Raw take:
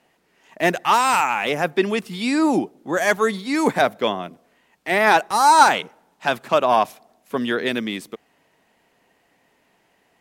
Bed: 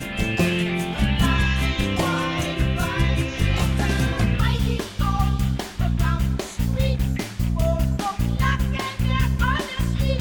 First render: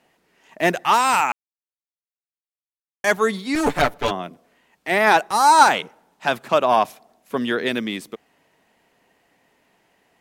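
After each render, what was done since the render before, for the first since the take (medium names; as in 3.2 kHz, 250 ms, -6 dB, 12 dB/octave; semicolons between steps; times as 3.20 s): 1.32–3.04 s: mute; 3.55–4.11 s: comb filter that takes the minimum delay 6.9 ms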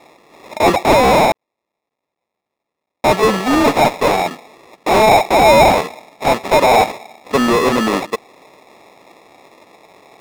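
sample-and-hold 29×; overdrive pedal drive 28 dB, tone 4 kHz, clips at -3 dBFS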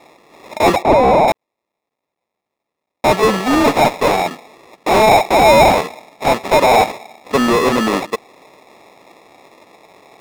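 0.82–1.28 s: resonances exaggerated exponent 1.5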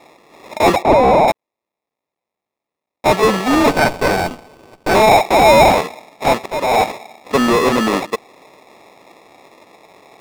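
1.31–3.08 s: level held to a coarse grid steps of 12 dB; 3.70–4.95 s: sliding maximum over 17 samples; 6.46–6.92 s: fade in, from -17 dB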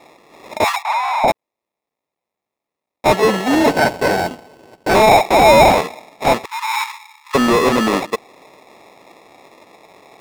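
0.64–1.24 s: steep high-pass 860 Hz 48 dB/octave; 3.14–4.90 s: comb of notches 1.2 kHz; 6.45–7.35 s: brick-wall FIR high-pass 830 Hz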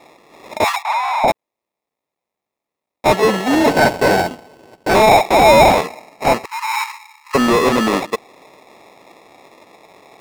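3.71–4.22 s: waveshaping leveller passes 1; 5.85–7.40 s: Butterworth band-stop 3.5 kHz, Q 6.8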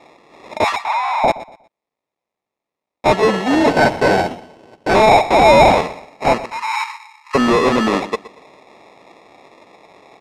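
distance through air 58 m; feedback delay 120 ms, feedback 29%, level -17 dB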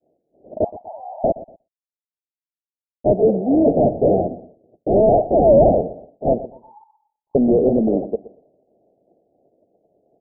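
expander -35 dBFS; steep low-pass 700 Hz 72 dB/octave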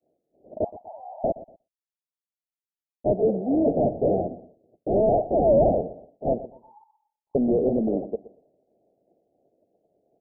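trim -6.5 dB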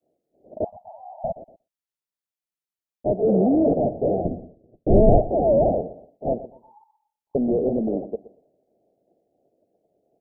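0.67–1.37 s: Chebyshev band-stop 180–690 Hz; 3.24–3.74 s: level flattener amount 100%; 4.25–5.31 s: tilt EQ -4 dB/octave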